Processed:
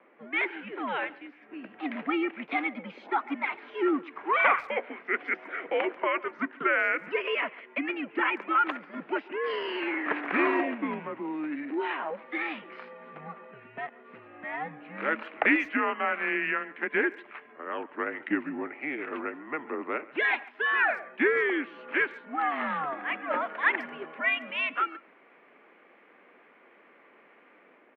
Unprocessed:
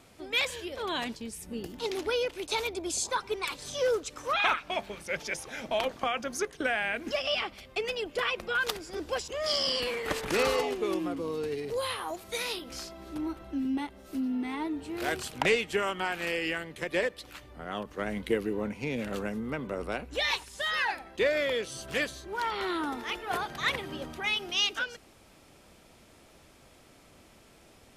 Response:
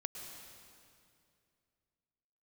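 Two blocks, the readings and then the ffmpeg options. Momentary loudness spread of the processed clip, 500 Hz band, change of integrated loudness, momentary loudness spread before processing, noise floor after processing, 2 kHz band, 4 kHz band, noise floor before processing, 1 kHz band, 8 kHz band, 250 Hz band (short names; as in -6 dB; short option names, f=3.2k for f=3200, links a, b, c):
14 LU, -1.5 dB, +2.0 dB, 9 LU, -58 dBFS, +4.5 dB, -10.5 dB, -57 dBFS, +4.0 dB, under -35 dB, +2.0 dB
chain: -filter_complex "[0:a]acrossover=split=430|1500[a][b][c];[c]dynaudnorm=f=170:g=5:m=6.5dB[d];[a][b][d]amix=inputs=3:normalize=0,highpass=f=340:t=q:w=0.5412,highpass=f=340:t=q:w=1.307,lowpass=f=2.4k:t=q:w=0.5176,lowpass=f=2.4k:t=q:w=0.7071,lowpass=f=2.4k:t=q:w=1.932,afreqshift=-150,highpass=f=240:w=0.5412,highpass=f=240:w=1.3066,asplit=2[e][f];[f]adelay=140,highpass=300,lowpass=3.4k,asoftclip=type=hard:threshold=-19dB,volume=-21dB[g];[e][g]amix=inputs=2:normalize=0,volume=1.5dB"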